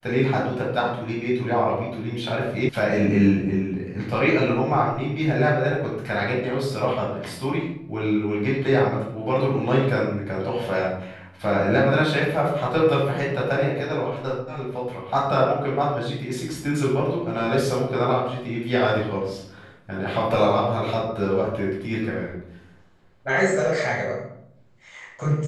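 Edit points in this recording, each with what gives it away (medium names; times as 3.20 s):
2.69 s: sound stops dead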